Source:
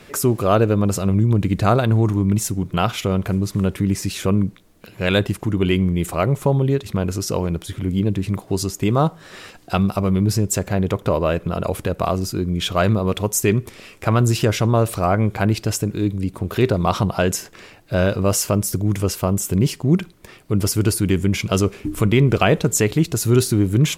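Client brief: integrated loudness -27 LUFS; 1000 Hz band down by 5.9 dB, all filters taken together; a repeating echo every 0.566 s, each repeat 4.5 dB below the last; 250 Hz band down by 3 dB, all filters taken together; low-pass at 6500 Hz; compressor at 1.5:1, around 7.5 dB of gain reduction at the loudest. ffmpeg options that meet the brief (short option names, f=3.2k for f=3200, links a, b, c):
-af "lowpass=6.5k,equalizer=f=250:t=o:g=-4,equalizer=f=1k:t=o:g=-8.5,acompressor=threshold=-34dB:ratio=1.5,aecho=1:1:566|1132|1698|2264|2830|3396|3962|4528|5094:0.596|0.357|0.214|0.129|0.0772|0.0463|0.0278|0.0167|0.01"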